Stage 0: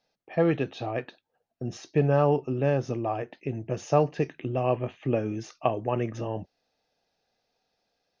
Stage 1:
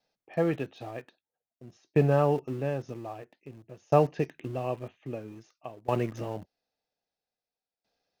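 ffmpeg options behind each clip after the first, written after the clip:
ffmpeg -i in.wav -filter_complex "[0:a]asplit=2[link_01][link_02];[link_02]aeval=exprs='val(0)*gte(abs(val(0)),0.0237)':channel_layout=same,volume=-7dB[link_03];[link_01][link_03]amix=inputs=2:normalize=0,aeval=exprs='val(0)*pow(10,-19*if(lt(mod(0.51*n/s,1),2*abs(0.51)/1000),1-mod(0.51*n/s,1)/(2*abs(0.51)/1000),(mod(0.51*n/s,1)-2*abs(0.51)/1000)/(1-2*abs(0.51)/1000))/20)':channel_layout=same,volume=-2.5dB" out.wav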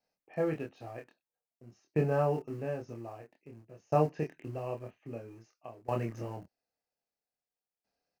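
ffmpeg -i in.wav -filter_complex "[0:a]equalizer=frequency=3500:width_type=o:width=0.31:gain=-11,asplit=2[link_01][link_02];[link_02]adelay=26,volume=-3.5dB[link_03];[link_01][link_03]amix=inputs=2:normalize=0,volume=-6.5dB" out.wav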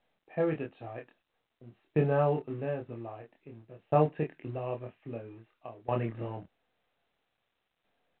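ffmpeg -i in.wav -af "volume=2dB" -ar 8000 -c:a pcm_mulaw out.wav

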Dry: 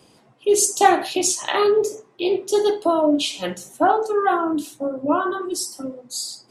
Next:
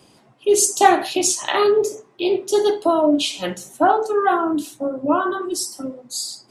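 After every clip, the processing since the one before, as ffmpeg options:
ffmpeg -i in.wav -af "bandreject=frequency=480:width=12,volume=1.5dB" out.wav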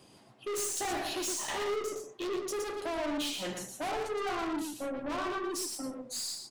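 ffmpeg -i in.wav -af "aeval=exprs='(tanh(22.4*val(0)+0.1)-tanh(0.1))/22.4':channel_layout=same,aecho=1:1:117:0.531,volume=-6dB" out.wav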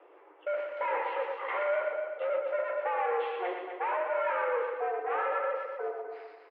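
ffmpeg -i in.wav -af "highpass=frequency=150:width_type=q:width=0.5412,highpass=frequency=150:width_type=q:width=1.307,lowpass=frequency=2200:width_type=q:width=0.5176,lowpass=frequency=2200:width_type=q:width=0.7071,lowpass=frequency=2200:width_type=q:width=1.932,afreqshift=180,aecho=1:1:251|502|753:0.422|0.0928|0.0204,volume=3.5dB" out.wav

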